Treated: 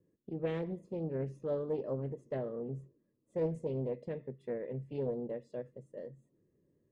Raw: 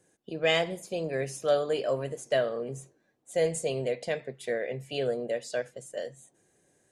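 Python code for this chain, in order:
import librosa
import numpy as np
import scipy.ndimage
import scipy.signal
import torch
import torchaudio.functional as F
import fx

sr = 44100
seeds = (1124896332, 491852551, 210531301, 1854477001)

y = np.convolve(x, np.full(58, 1.0 / 58))[:len(x)]
y = fx.doppler_dist(y, sr, depth_ms=0.29)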